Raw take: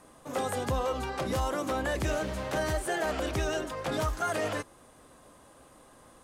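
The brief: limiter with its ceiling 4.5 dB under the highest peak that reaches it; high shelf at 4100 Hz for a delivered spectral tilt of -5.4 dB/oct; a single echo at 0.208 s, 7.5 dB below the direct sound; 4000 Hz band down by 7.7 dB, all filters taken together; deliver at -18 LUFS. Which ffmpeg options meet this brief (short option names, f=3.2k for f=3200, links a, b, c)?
-af "equalizer=f=4k:t=o:g=-8,highshelf=f=4.1k:g=-5,alimiter=level_in=2dB:limit=-24dB:level=0:latency=1,volume=-2dB,aecho=1:1:208:0.422,volume=16.5dB"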